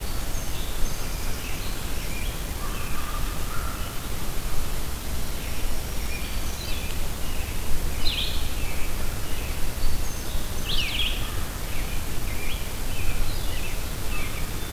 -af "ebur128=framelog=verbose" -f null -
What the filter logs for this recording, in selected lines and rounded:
Integrated loudness:
  I:         -30.7 LUFS
  Threshold: -40.7 LUFS
Loudness range:
  LRA:         2.6 LU
  Threshold: -50.6 LUFS
  LRA low:   -31.9 LUFS
  LRA high:  -29.3 LUFS